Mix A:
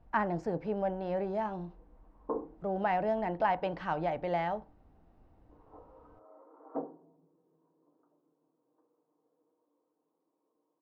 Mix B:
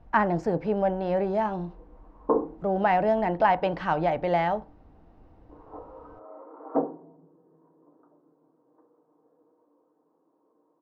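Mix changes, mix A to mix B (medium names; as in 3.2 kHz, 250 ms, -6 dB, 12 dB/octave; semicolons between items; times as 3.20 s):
speech +7.5 dB; background +11.5 dB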